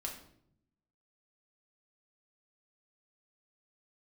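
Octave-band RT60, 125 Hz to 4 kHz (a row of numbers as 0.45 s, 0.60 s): 1.2 s, 1.1 s, 0.80 s, 0.60 s, 0.55 s, 0.50 s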